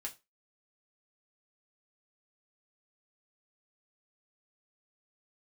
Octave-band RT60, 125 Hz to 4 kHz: 0.25 s, 0.25 s, 0.25 s, 0.25 s, 0.20 s, 0.20 s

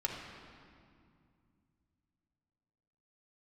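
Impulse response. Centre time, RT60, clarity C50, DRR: 76 ms, 2.3 s, 2.5 dB, -1.5 dB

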